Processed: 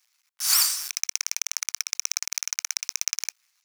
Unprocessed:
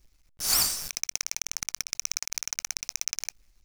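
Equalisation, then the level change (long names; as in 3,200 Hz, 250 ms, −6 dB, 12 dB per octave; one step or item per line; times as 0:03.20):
high-pass filter 1,000 Hz 24 dB per octave
+3.5 dB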